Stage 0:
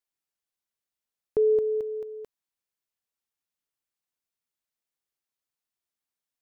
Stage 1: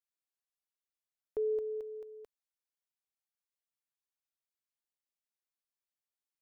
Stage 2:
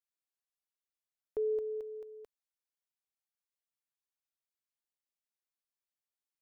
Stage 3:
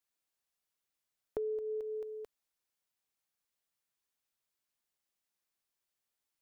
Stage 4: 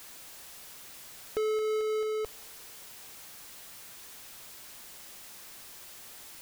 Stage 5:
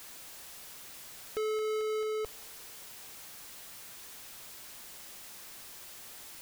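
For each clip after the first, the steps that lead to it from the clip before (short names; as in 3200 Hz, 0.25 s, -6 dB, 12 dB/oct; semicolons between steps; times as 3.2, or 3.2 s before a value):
bell 150 Hz -14 dB 1.4 oct; gain -8.5 dB
nothing audible
compressor 6:1, threshold -41 dBFS, peak gain reduction 10 dB; gain +6 dB
power-law curve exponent 0.35; spring tank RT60 3.1 s, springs 36 ms, DRR 19 dB
soft clip -29.5 dBFS, distortion -18 dB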